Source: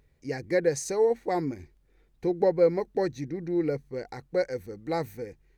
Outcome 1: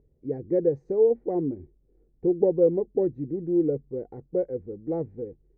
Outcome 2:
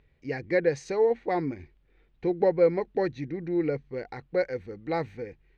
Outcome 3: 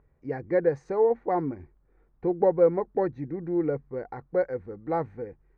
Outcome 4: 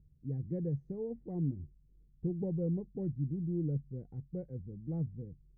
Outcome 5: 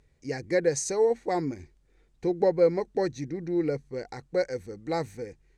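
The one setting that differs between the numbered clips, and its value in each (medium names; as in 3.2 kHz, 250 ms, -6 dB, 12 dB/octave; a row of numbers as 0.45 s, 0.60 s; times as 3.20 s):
resonant low-pass, frequency: 420 Hz, 3 kHz, 1.2 kHz, 160 Hz, 8 kHz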